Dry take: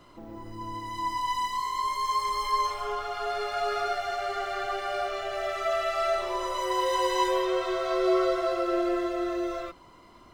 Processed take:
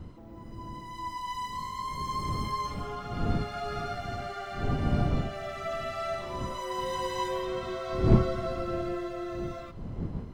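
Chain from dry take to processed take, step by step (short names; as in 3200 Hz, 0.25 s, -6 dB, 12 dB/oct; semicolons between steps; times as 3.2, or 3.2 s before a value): wind noise 170 Hz -27 dBFS; Schroeder reverb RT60 3.9 s, combs from 25 ms, DRR 17.5 dB; gain -6.5 dB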